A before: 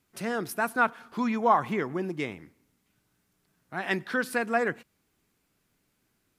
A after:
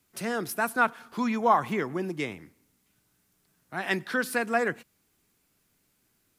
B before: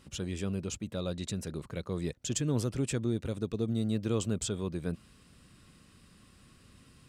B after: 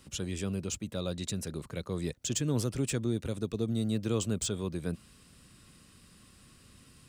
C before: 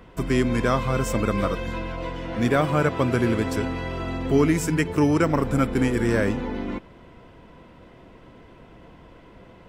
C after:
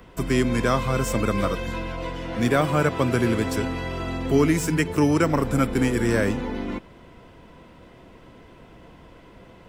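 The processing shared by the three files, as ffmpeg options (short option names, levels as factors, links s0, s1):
-filter_complex "[0:a]highshelf=f=5000:g=7,acrossover=split=200|5500[s0][s1][s2];[s2]asoftclip=type=tanh:threshold=0.0299[s3];[s0][s1][s3]amix=inputs=3:normalize=0"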